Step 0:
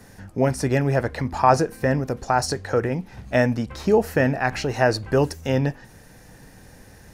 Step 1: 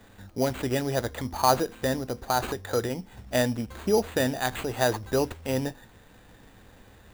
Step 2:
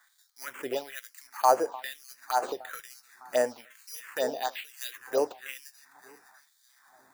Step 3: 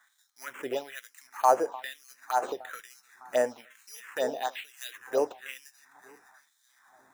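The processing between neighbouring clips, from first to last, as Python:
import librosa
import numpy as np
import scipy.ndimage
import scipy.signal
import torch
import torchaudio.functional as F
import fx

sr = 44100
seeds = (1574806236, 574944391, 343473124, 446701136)

y1 = fx.sample_hold(x, sr, seeds[0], rate_hz=5400.0, jitter_pct=0)
y1 = fx.peak_eq(y1, sr, hz=150.0, db=-13.0, octaves=0.22)
y1 = y1 * 10.0 ** (-5.0 / 20.0)
y2 = fx.echo_alternate(y1, sr, ms=303, hz=1300.0, feedback_pct=67, wet_db=-13)
y2 = fx.filter_lfo_highpass(y2, sr, shape='sine', hz=1.1, low_hz=470.0, high_hz=4200.0, q=1.6)
y2 = fx.env_phaser(y2, sr, low_hz=460.0, high_hz=3700.0, full_db=-18.5)
y2 = y2 * 10.0 ** (-2.5 / 20.0)
y3 = fx.high_shelf(y2, sr, hz=10000.0, db=-8.0)
y3 = fx.notch(y3, sr, hz=4600.0, q=5.1)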